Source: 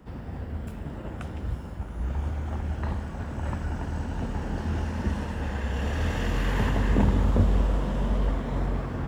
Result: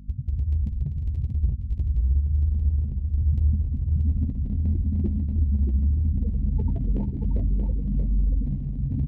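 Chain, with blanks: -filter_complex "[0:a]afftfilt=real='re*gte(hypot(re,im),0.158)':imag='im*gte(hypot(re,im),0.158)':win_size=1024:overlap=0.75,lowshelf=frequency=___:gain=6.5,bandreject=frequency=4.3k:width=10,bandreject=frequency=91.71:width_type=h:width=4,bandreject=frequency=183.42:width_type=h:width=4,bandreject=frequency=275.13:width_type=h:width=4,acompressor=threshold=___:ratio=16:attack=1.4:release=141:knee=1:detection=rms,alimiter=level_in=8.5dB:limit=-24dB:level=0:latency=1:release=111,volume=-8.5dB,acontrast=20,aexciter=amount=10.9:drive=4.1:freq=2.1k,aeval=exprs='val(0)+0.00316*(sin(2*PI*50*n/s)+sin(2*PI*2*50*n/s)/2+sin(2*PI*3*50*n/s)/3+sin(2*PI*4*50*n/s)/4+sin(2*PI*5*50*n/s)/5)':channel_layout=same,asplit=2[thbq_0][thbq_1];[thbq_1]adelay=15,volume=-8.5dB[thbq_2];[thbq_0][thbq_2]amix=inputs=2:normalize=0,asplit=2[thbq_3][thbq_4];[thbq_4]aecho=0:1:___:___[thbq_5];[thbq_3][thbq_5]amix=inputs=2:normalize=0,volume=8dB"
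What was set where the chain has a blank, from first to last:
340, -29dB, 631, 0.562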